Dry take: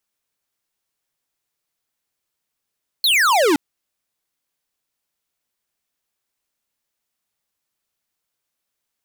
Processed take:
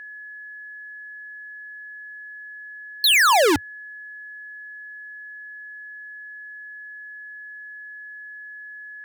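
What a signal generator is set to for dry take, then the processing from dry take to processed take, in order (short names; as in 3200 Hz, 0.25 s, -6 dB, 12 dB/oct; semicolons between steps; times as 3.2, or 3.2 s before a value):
laser zap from 4400 Hz, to 270 Hz, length 0.52 s square, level -15 dB
resonant low shelf 130 Hz +11.5 dB, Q 3; whine 1700 Hz -36 dBFS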